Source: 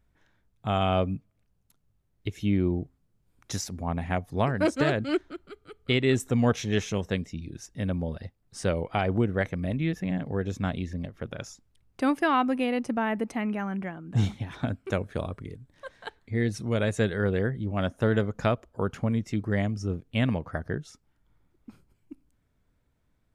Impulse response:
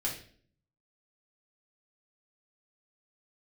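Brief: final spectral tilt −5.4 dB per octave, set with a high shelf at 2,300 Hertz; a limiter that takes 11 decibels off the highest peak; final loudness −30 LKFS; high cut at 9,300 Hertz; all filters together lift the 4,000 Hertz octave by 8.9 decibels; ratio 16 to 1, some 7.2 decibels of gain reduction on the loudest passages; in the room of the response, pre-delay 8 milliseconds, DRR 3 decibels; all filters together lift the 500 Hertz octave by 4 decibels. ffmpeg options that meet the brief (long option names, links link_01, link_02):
-filter_complex "[0:a]lowpass=9300,equalizer=frequency=500:width_type=o:gain=4.5,highshelf=frequency=2300:gain=6.5,equalizer=frequency=4000:width_type=o:gain=6,acompressor=threshold=-23dB:ratio=16,alimiter=limit=-20dB:level=0:latency=1,asplit=2[link_01][link_02];[1:a]atrim=start_sample=2205,adelay=8[link_03];[link_02][link_03]afir=irnorm=-1:irlink=0,volume=-7dB[link_04];[link_01][link_04]amix=inputs=2:normalize=0"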